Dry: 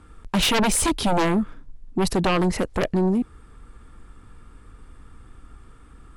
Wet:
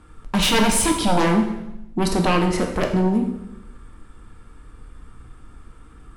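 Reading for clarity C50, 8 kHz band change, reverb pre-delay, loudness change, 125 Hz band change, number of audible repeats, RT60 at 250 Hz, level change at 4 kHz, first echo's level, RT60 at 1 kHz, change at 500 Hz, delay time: 6.0 dB, +2.0 dB, 4 ms, +2.0 dB, +2.5 dB, none, 1.1 s, +2.0 dB, none, 0.80 s, +1.5 dB, none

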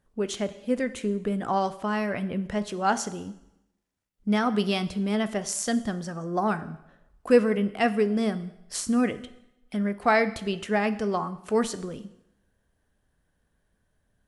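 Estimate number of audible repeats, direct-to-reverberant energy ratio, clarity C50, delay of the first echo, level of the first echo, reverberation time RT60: none, 12.0 dB, 15.0 dB, none, none, 0.85 s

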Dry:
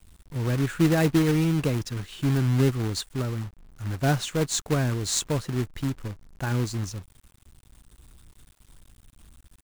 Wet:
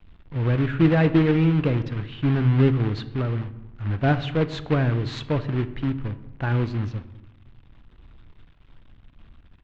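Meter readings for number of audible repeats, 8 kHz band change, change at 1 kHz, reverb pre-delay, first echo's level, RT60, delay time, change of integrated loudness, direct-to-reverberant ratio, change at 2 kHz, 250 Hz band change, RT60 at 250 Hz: none, under -20 dB, +2.5 dB, 4 ms, none, 0.95 s, none, +2.5 dB, 11.5 dB, +2.5 dB, +3.0 dB, 1.4 s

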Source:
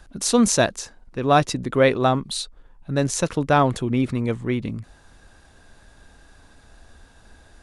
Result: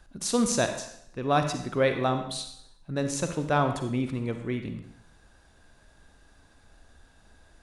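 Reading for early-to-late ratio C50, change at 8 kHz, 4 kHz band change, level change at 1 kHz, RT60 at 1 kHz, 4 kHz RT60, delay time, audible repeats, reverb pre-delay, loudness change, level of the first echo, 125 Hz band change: 7.5 dB, -6.5 dB, -6.5 dB, -7.0 dB, 0.70 s, 0.70 s, none, none, 37 ms, -7.0 dB, none, -6.5 dB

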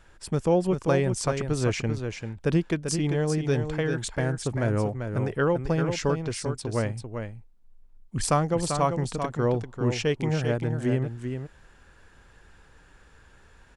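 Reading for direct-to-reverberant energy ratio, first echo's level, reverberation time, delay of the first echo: none, -7.0 dB, none, 0.392 s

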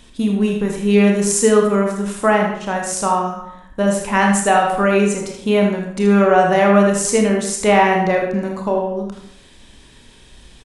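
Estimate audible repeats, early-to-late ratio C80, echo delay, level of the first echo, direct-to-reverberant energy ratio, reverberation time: 1, 7.5 dB, 79 ms, -8.0 dB, 0.5 dB, 0.70 s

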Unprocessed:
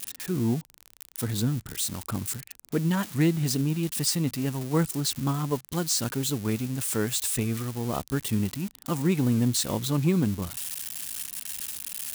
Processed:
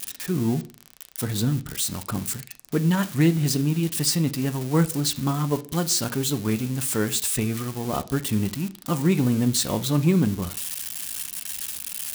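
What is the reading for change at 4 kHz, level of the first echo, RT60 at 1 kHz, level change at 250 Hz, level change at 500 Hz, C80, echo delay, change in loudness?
+3.5 dB, none, 0.35 s, +3.5 dB, +3.0 dB, 24.0 dB, none, +3.5 dB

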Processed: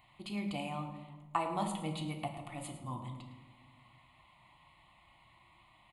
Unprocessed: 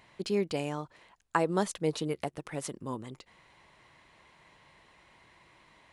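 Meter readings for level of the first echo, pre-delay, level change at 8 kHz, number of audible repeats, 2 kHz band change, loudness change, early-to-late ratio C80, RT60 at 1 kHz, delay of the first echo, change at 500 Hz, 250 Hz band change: -13.5 dB, 3 ms, -8.0 dB, 1, -7.5 dB, -6.5 dB, 8.5 dB, 1.1 s, 0.108 s, -11.5 dB, -5.0 dB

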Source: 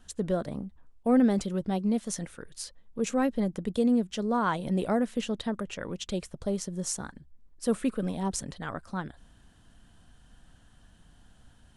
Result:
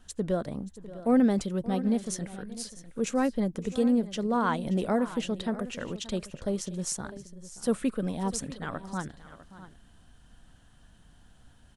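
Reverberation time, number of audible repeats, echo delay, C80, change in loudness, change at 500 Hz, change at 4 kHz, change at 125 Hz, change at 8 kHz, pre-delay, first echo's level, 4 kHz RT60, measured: none, 2, 0.578 s, none, 0.0 dB, 0.0 dB, 0.0 dB, 0.0 dB, 0.0 dB, none, -17.5 dB, none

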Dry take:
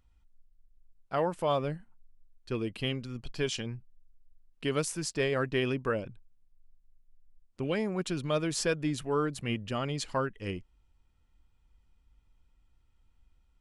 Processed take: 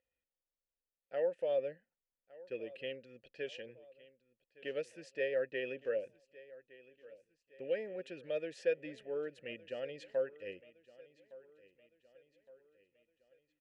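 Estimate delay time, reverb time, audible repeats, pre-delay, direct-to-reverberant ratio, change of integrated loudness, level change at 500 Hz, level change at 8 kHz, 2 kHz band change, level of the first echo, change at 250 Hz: 1.163 s, none, 3, none, none, -7.0 dB, -4.0 dB, under -25 dB, -8.5 dB, -20.0 dB, -17.0 dB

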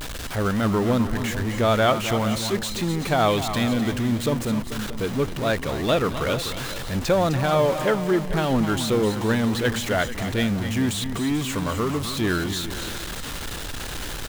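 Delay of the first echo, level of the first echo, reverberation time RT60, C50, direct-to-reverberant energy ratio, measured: 0.257 s, -9.0 dB, none, none, none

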